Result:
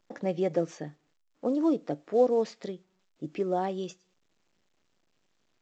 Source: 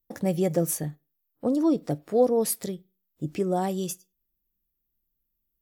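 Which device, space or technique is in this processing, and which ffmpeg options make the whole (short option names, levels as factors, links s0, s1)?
telephone: -af "highpass=250,lowpass=3500,volume=0.841" -ar 16000 -c:a pcm_alaw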